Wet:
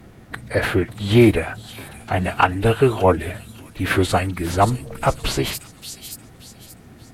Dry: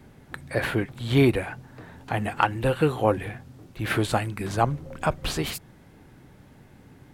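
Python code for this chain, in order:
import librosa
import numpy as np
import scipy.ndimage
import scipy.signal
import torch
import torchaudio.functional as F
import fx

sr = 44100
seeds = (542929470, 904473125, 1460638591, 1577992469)

y = fx.pitch_keep_formants(x, sr, semitones=-2.5)
y = fx.echo_wet_highpass(y, sr, ms=578, feedback_pct=34, hz=5200.0, wet_db=-3.0)
y = y * 10.0 ** (6.5 / 20.0)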